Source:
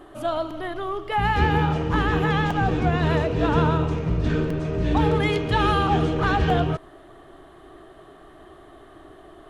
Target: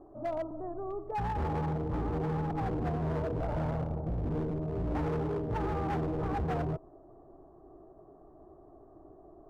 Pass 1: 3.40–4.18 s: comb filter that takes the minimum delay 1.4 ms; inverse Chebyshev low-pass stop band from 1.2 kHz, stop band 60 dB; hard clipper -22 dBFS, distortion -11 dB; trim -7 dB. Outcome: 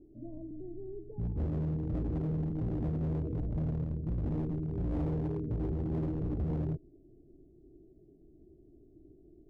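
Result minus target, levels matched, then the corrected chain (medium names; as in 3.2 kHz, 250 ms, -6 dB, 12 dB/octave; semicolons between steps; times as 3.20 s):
1 kHz band -15.5 dB
3.40–4.18 s: comb filter that takes the minimum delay 1.4 ms; inverse Chebyshev low-pass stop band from 3 kHz, stop band 60 dB; hard clipper -22 dBFS, distortion -9 dB; trim -7 dB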